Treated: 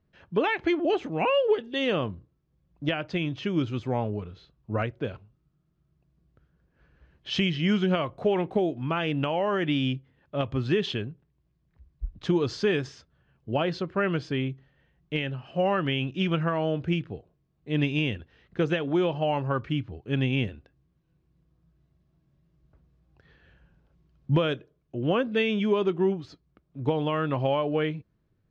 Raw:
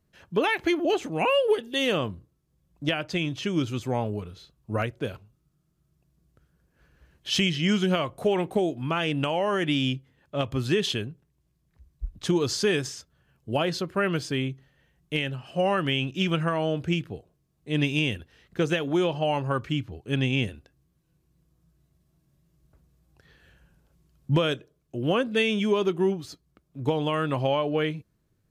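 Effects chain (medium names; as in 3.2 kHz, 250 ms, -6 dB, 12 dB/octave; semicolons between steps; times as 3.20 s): distance through air 200 m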